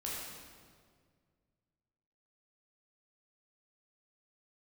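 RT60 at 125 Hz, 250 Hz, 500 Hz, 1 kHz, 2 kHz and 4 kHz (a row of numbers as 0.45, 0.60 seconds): 2.7, 2.3, 2.1, 1.7, 1.5, 1.4 seconds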